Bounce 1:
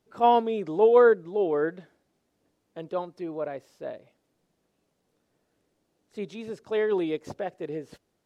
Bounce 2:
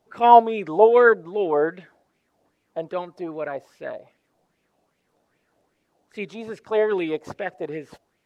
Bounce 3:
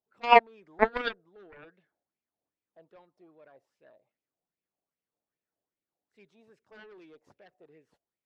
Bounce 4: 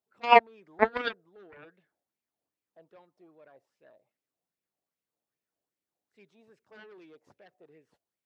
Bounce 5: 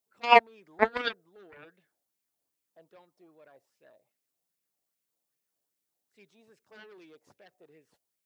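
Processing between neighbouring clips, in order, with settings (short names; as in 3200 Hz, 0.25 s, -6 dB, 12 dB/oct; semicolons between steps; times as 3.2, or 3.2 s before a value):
LFO bell 2.5 Hz 660–2500 Hz +14 dB; gain +1.5 dB
added harmonics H 3 -9 dB, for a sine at -1 dBFS; gain -2 dB
HPF 56 Hz
high shelf 4200 Hz +11 dB; gain -1 dB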